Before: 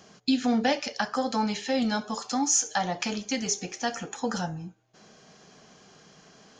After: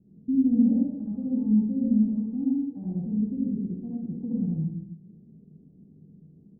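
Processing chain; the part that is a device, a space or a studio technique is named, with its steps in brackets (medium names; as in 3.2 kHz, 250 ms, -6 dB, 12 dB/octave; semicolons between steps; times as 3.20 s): next room (low-pass 270 Hz 24 dB/octave; reverberation RT60 0.80 s, pre-delay 53 ms, DRR -6 dB)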